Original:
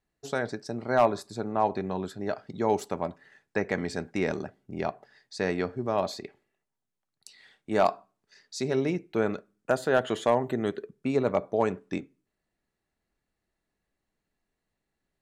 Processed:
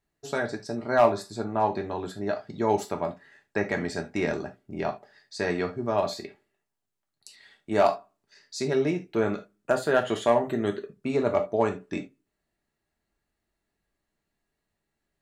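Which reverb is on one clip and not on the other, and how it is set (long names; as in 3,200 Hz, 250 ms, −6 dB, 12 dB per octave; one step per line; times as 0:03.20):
reverb whose tail is shaped and stops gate 100 ms falling, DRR 3 dB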